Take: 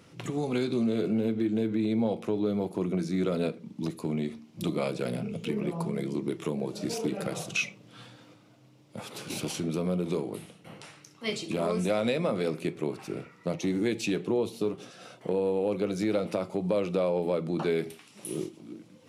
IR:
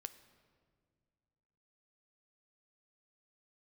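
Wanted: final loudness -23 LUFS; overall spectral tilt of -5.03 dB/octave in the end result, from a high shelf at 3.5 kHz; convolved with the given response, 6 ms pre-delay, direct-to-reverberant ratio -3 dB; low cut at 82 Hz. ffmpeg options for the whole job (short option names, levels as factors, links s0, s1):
-filter_complex "[0:a]highpass=82,highshelf=f=3500:g=8.5,asplit=2[s0][s1];[1:a]atrim=start_sample=2205,adelay=6[s2];[s1][s2]afir=irnorm=-1:irlink=0,volume=2.37[s3];[s0][s3]amix=inputs=2:normalize=0,volume=1.26"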